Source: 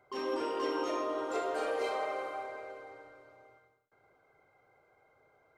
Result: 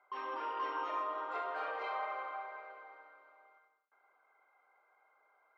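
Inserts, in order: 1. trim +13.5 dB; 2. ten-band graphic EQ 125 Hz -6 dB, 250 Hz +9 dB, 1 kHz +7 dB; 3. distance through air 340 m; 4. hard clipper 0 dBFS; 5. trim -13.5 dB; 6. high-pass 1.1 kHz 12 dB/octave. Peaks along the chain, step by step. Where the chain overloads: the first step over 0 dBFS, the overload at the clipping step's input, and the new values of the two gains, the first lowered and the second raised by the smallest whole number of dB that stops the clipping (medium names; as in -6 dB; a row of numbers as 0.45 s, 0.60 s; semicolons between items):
-8.5 dBFS, -4.0 dBFS, -5.0 dBFS, -5.0 dBFS, -18.5 dBFS, -27.5 dBFS; nothing clips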